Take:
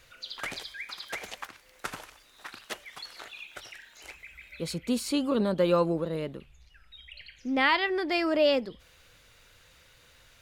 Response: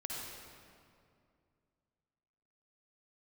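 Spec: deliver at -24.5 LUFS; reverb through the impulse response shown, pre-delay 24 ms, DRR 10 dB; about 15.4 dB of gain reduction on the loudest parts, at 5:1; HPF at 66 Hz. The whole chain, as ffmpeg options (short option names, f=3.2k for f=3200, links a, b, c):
-filter_complex "[0:a]highpass=66,acompressor=threshold=-37dB:ratio=5,asplit=2[a][b];[1:a]atrim=start_sample=2205,adelay=24[c];[b][c]afir=irnorm=-1:irlink=0,volume=-11dB[d];[a][d]amix=inputs=2:normalize=0,volume=16.5dB"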